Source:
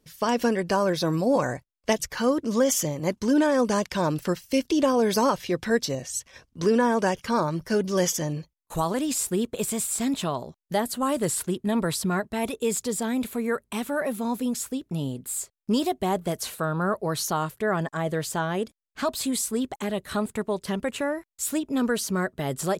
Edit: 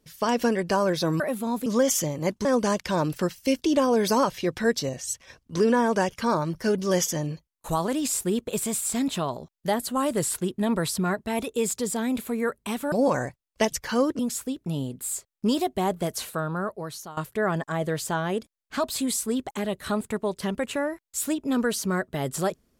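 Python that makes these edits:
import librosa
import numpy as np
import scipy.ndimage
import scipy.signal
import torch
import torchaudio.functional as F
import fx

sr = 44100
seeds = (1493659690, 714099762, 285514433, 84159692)

y = fx.edit(x, sr, fx.swap(start_s=1.2, length_s=1.27, other_s=13.98, other_length_s=0.46),
    fx.cut(start_s=3.26, length_s=0.25),
    fx.fade_out_to(start_s=16.47, length_s=0.95, floor_db=-18.0), tone=tone)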